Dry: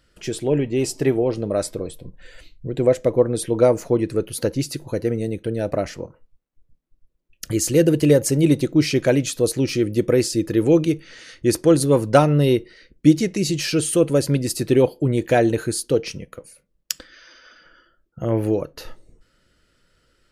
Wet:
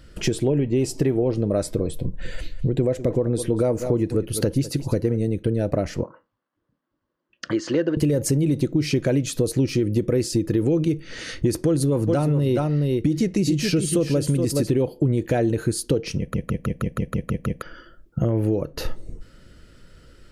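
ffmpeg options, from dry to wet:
ffmpeg -i in.wav -filter_complex "[0:a]asettb=1/sr,asplit=3[link_01][link_02][link_03];[link_01]atrim=end=2.034[link_04];[link_02]atrim=start=2.03:end=5.17,asetpts=PTS-STARTPTS,afade=type=in:duration=0.004:curve=qsin,afade=type=out:start_time=3.136:duration=0.004:curve=qsin,aecho=1:1:199:0.141,atrim=end_sample=138474[link_05];[link_03]atrim=start=5.166[link_06];[link_04][link_05]acrossfade=duration=0.004:curve1=hsin:curve2=qsin[link_07];[link_07][link_06]acrossfade=duration=0.004:curve1=qsin:curve2=hsin,asettb=1/sr,asplit=3[link_08][link_09][link_10];[link_08]atrim=end=6.034[link_11];[link_09]atrim=start=6.03:end=7.97,asetpts=PTS-STARTPTS,afade=type=in:duration=0.004:curve=qsin,afade=type=out:start_time=1.936:duration=0.004:curve=qsin,highpass=420,equalizer=frequency=440:width_type=q:width=4:gain=-8,equalizer=frequency=720:width_type=q:width=4:gain=-3,equalizer=frequency=1100:width_type=q:width=4:gain=7,equalizer=frequency=1600:width_type=q:width=4:gain=5,equalizer=frequency=2400:width_type=q:width=4:gain=-9,equalizer=frequency=3800:width_type=q:width=4:gain=-6,lowpass=frequency=4100:width=0.5412,lowpass=frequency=4100:width=1.3066[link_12];[link_10]atrim=start=7.966[link_13];[link_11][link_12]acrossfade=duration=0.004:curve1=hsin:curve2=qsin[link_14];[link_14][link_13]acrossfade=duration=0.004:curve1=qsin:curve2=hsin,asettb=1/sr,asplit=3[link_15][link_16][link_17];[link_15]atrim=end=11.654[link_18];[link_16]atrim=start=11.65:end=14.73,asetpts=PTS-STARTPTS,afade=type=in:duration=0.004:curve=qsin,afade=type=out:start_time=3.076:duration=0.004:curve=qsin,aecho=1:1:421:0.422,atrim=end_sample=135828[link_19];[link_17]atrim=start=14.726[link_20];[link_18][link_19]acrossfade=duration=0.004:curve1=hsin:curve2=qsin[link_21];[link_21][link_20]acrossfade=duration=0.004:curve1=qsin:curve2=hsin,asplit=10[link_22][link_23][link_24][link_25][link_26][link_27][link_28][link_29][link_30][link_31];[link_22]atrim=end=16.342[link_32];[link_23]atrim=start=16.178:end=16.342[link_33];[link_24]atrim=start=16.178:end=16.342[link_34];[link_25]atrim=start=16.178:end=16.342[link_35];[link_26]atrim=start=16.178:end=16.342[link_36];[link_27]atrim=start=16.178:end=16.342[link_37];[link_28]atrim=start=16.178:end=16.342[link_38];[link_29]atrim=start=16.178:end=16.342[link_39];[link_30]atrim=start=16.178:end=16.342[link_40];[link_31]atrim=start=17.618[link_41];[link_32][link_33]acrossfade=duration=0.004:curve1=hsin:curve2=hsin[link_42];[link_42][link_34]acrossfade=duration=0.004:curve1=hsin:curve2=hsin[link_43];[link_43][link_35]acrossfade=duration=0.004:curve1=hsin:curve2=hsin[link_44];[link_44][link_36]acrossfade=duration=0.004:curve1=hsin:curve2=hsin[link_45];[link_45][link_37]acrossfade=duration=0.004:curve1=hsin:curve2=hsin[link_46];[link_46][link_38]acrossfade=duration=0.004:curve1=hsin:curve2=hsin[link_47];[link_47][link_39]acrossfade=duration=0.004:curve1=hsin:curve2=hsin[link_48];[link_48][link_40]acrossfade=duration=0.004:curve1=hsin:curve2=hsin[link_49];[link_49][link_41]acrossfade=duration=0.004:curve1=hsin:curve2=hsin,lowshelf=frequency=410:gain=9.5,alimiter=limit=-5.5dB:level=0:latency=1:release=49,acompressor=threshold=-28dB:ratio=4,volume=7.5dB" out.wav

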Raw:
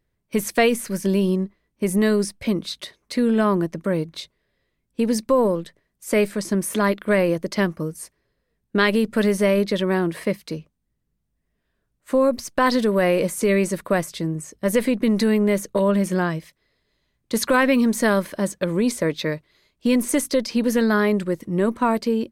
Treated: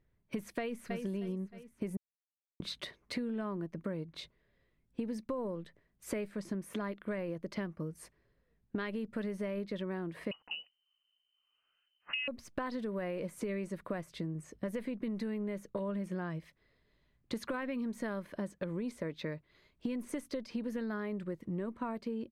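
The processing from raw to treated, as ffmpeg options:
ffmpeg -i in.wav -filter_complex "[0:a]asplit=2[link_01][link_02];[link_02]afade=type=in:start_time=0.59:duration=0.01,afade=type=out:start_time=1.01:duration=0.01,aecho=0:1:310|620|930|1240:0.375837|0.112751|0.0338254|0.0101476[link_03];[link_01][link_03]amix=inputs=2:normalize=0,asettb=1/sr,asplit=3[link_04][link_05][link_06];[link_04]atrim=end=10.314[link_07];[link_05]atrim=start=10.31:end=12.28,asetpts=PTS-STARTPTS,afade=type=in:duration=0.004:curve=qsin,afade=type=out:start_time=1.966:duration=0.004:curve=qsin,lowpass=frequency=2600:width_type=q:width=0.5098,lowpass=frequency=2600:width_type=q:width=0.6013,lowpass=frequency=2600:width_type=q:width=0.9,lowpass=frequency=2600:width_type=q:width=2.563,afreqshift=-3100[link_08];[link_06]atrim=start=12.276[link_09];[link_07][link_08]acrossfade=duration=0.004:curve1=hsin:curve2=qsin[link_10];[link_10][link_09]acrossfade=duration=0.004:curve1=qsin:curve2=hsin,asplit=3[link_11][link_12][link_13];[link_11]atrim=end=1.97,asetpts=PTS-STARTPTS,afade=type=out:start_time=1.966:duration=0.004:curve=hsin[link_14];[link_12]atrim=start=1.97:end=2.6,asetpts=PTS-STARTPTS,volume=0[link_15];[link_13]atrim=start=2.6,asetpts=PTS-STARTPTS,afade=type=in:duration=0.004:curve=hsin[link_16];[link_14][link_15][link_16]concat=n=3:v=0:a=1,bass=frequency=250:gain=3,treble=frequency=4000:gain=-11,acompressor=threshold=-33dB:ratio=6,volume=-3dB" out.wav

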